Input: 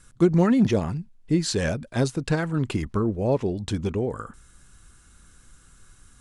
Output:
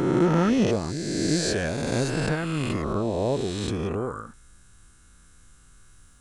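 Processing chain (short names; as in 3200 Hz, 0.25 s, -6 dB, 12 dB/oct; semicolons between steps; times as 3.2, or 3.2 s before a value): spectral swells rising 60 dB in 2.33 s; gain -5 dB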